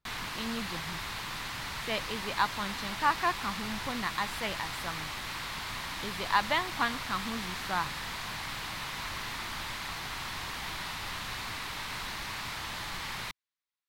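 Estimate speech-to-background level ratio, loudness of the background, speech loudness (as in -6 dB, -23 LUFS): 3.0 dB, -36.5 LUFS, -33.5 LUFS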